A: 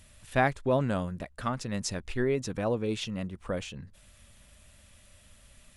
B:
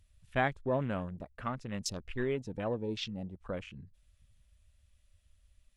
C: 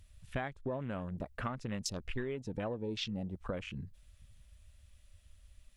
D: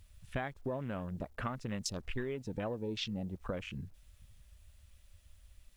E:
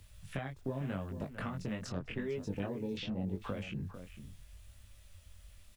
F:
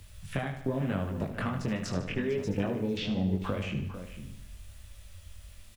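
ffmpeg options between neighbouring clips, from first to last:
ffmpeg -i in.wav -af "afwtdn=0.00794,equalizer=frequency=4200:width=0.63:gain=4.5,volume=-5.5dB" out.wav
ffmpeg -i in.wav -af "acompressor=threshold=-40dB:ratio=20,volume=6.5dB" out.wav
ffmpeg -i in.wav -af "acrusher=bits=11:mix=0:aa=0.000001" out.wav
ffmpeg -i in.wav -filter_complex "[0:a]acrossover=split=81|330|2700[link_01][link_02][link_03][link_04];[link_01]acompressor=threshold=-59dB:ratio=4[link_05];[link_02]acompressor=threshold=-43dB:ratio=4[link_06];[link_03]acompressor=threshold=-48dB:ratio=4[link_07];[link_04]acompressor=threshold=-59dB:ratio=4[link_08];[link_05][link_06][link_07][link_08]amix=inputs=4:normalize=0,asplit=2[link_09][link_10];[link_10]adelay=449,volume=-11dB,highshelf=frequency=4000:gain=-10.1[link_11];[link_09][link_11]amix=inputs=2:normalize=0,flanger=delay=19.5:depth=3.5:speed=0.83,volume=8.5dB" out.wav
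ffmpeg -i in.wav -af "aecho=1:1:75|150|225|300|375|450:0.335|0.174|0.0906|0.0471|0.0245|0.0127,volume=6.5dB" out.wav

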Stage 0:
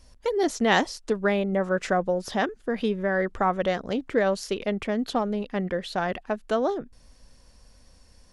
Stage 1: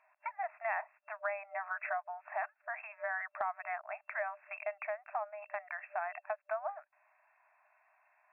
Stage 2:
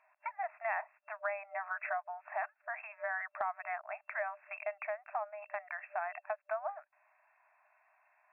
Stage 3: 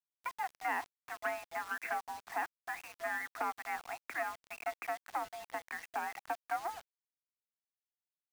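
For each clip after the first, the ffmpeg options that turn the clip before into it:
ffmpeg -i in.wav -af "afftfilt=real='re*between(b*sr/4096,600,2700)':imag='im*between(b*sr/4096,600,2700)':win_size=4096:overlap=0.75,acompressor=threshold=-35dB:ratio=3,volume=-1dB" out.wav
ffmpeg -i in.wav -af anull out.wav
ffmpeg -i in.wav -af "aeval=exprs='(tanh(22.4*val(0)+0.8)-tanh(0.8))/22.4':channel_layout=same,highpass=frequency=170:width_type=q:width=0.5412,highpass=frequency=170:width_type=q:width=1.307,lowpass=frequency=2500:width_type=q:width=0.5176,lowpass=frequency=2500:width_type=q:width=0.7071,lowpass=frequency=2500:width_type=q:width=1.932,afreqshift=71,acrusher=bits=8:mix=0:aa=0.000001,volume=4.5dB" out.wav

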